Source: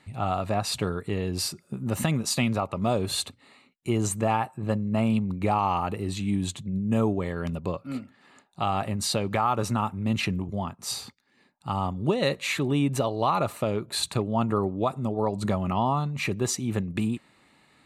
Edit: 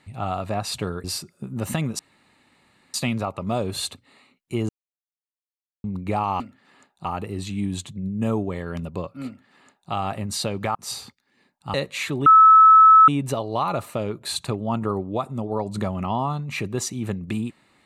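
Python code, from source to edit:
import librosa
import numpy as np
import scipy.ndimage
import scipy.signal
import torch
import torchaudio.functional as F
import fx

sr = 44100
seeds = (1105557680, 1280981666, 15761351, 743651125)

y = fx.edit(x, sr, fx.cut(start_s=1.04, length_s=0.3),
    fx.insert_room_tone(at_s=2.29, length_s=0.95),
    fx.silence(start_s=4.04, length_s=1.15),
    fx.duplicate(start_s=7.96, length_s=0.65, to_s=5.75),
    fx.cut(start_s=9.45, length_s=1.3),
    fx.cut(start_s=11.74, length_s=0.49),
    fx.insert_tone(at_s=12.75, length_s=0.82, hz=1300.0, db=-7.5), tone=tone)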